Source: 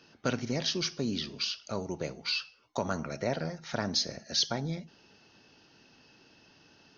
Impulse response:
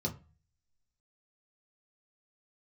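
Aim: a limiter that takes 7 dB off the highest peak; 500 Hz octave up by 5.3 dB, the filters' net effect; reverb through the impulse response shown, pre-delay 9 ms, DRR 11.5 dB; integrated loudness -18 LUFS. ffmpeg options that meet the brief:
-filter_complex "[0:a]equalizer=f=500:t=o:g=6.5,alimiter=limit=-20.5dB:level=0:latency=1,asplit=2[a][b];[1:a]atrim=start_sample=2205,adelay=9[c];[b][c]afir=irnorm=-1:irlink=0,volume=-14.5dB[d];[a][d]amix=inputs=2:normalize=0,volume=14dB"

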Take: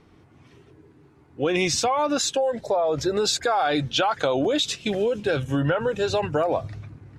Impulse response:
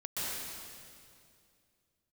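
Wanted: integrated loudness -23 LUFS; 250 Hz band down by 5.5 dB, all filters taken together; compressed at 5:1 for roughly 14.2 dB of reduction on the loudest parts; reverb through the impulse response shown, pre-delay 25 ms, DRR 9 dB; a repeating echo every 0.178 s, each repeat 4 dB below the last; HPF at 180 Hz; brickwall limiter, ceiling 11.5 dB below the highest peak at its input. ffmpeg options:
-filter_complex "[0:a]highpass=180,equalizer=f=250:t=o:g=-6.5,acompressor=threshold=-36dB:ratio=5,alimiter=level_in=7dB:limit=-24dB:level=0:latency=1,volume=-7dB,aecho=1:1:178|356|534|712|890|1068|1246|1424|1602:0.631|0.398|0.25|0.158|0.0994|0.0626|0.0394|0.0249|0.0157,asplit=2[a][b];[1:a]atrim=start_sample=2205,adelay=25[c];[b][c]afir=irnorm=-1:irlink=0,volume=-14dB[d];[a][d]amix=inputs=2:normalize=0,volume=14dB"

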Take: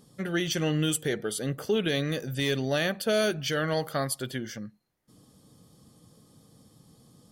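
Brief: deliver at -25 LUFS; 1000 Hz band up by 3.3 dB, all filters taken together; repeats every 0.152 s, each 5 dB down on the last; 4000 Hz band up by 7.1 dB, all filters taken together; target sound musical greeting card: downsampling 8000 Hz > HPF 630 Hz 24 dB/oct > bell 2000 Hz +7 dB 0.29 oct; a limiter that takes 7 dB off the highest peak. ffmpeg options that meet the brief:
-af "equalizer=f=1k:t=o:g=4.5,equalizer=f=4k:t=o:g=8.5,alimiter=limit=-16.5dB:level=0:latency=1,aecho=1:1:152|304|456|608|760|912|1064:0.562|0.315|0.176|0.0988|0.0553|0.031|0.0173,aresample=8000,aresample=44100,highpass=f=630:w=0.5412,highpass=f=630:w=1.3066,equalizer=f=2k:t=o:w=0.29:g=7,volume=3.5dB"

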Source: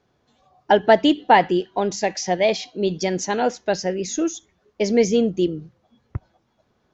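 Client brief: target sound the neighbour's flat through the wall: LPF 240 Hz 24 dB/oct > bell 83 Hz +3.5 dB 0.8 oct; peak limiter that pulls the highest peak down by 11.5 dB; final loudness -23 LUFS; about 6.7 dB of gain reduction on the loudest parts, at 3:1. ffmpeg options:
-af "acompressor=threshold=-18dB:ratio=3,alimiter=limit=-18.5dB:level=0:latency=1,lowpass=f=240:w=0.5412,lowpass=f=240:w=1.3066,equalizer=f=83:t=o:w=0.8:g=3.5,volume=13.5dB"

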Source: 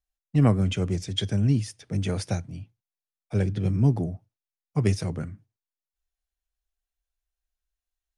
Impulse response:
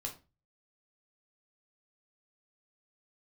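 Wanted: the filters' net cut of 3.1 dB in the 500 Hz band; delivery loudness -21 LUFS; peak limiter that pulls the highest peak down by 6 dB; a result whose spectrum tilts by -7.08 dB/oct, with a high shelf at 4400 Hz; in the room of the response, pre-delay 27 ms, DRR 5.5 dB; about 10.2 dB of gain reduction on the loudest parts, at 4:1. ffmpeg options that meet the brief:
-filter_complex "[0:a]equalizer=f=500:t=o:g=-4,highshelf=f=4.4k:g=-3.5,acompressor=threshold=-28dB:ratio=4,alimiter=limit=-24dB:level=0:latency=1,asplit=2[a][b];[1:a]atrim=start_sample=2205,adelay=27[c];[b][c]afir=irnorm=-1:irlink=0,volume=-4.5dB[d];[a][d]amix=inputs=2:normalize=0,volume=12dB"

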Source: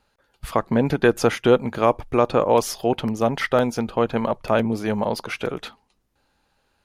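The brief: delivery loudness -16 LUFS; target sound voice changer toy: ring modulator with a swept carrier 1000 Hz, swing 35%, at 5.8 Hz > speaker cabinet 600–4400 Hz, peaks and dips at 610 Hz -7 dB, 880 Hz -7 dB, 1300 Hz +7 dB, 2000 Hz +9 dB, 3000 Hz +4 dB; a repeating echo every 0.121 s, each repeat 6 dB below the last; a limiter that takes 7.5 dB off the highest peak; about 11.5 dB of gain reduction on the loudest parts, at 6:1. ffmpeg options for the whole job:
-af "acompressor=threshold=-24dB:ratio=6,alimiter=limit=-18dB:level=0:latency=1,aecho=1:1:121|242|363|484|605|726:0.501|0.251|0.125|0.0626|0.0313|0.0157,aeval=exprs='val(0)*sin(2*PI*1000*n/s+1000*0.35/5.8*sin(2*PI*5.8*n/s))':c=same,highpass=600,equalizer=f=610:t=q:w=4:g=-7,equalizer=f=880:t=q:w=4:g=-7,equalizer=f=1.3k:t=q:w=4:g=7,equalizer=f=2k:t=q:w=4:g=9,equalizer=f=3k:t=q:w=4:g=4,lowpass=f=4.4k:w=0.5412,lowpass=f=4.4k:w=1.3066,volume=13dB"

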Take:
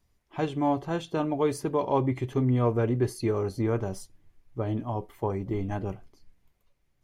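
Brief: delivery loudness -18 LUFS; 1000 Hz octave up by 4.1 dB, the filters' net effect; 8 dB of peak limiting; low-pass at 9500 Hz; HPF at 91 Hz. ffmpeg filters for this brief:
-af "highpass=91,lowpass=9.5k,equalizer=f=1k:t=o:g=5,volume=11.5dB,alimiter=limit=-6dB:level=0:latency=1"

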